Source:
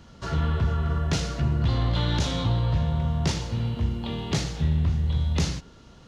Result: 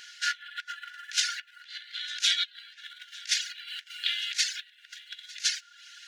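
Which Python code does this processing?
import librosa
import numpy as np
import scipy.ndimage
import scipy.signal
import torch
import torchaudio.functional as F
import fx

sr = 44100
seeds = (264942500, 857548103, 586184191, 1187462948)

y = fx.dereverb_blind(x, sr, rt60_s=0.55)
y = fx.over_compress(y, sr, threshold_db=-30.0, ratio=-0.5)
y = fx.brickwall_highpass(y, sr, low_hz=1400.0)
y = y + 10.0 ** (-21.5 / 20.0) * np.pad(y, (int(904 * sr / 1000.0), 0))[:len(y)]
y = F.gain(torch.from_numpy(y), 8.0).numpy()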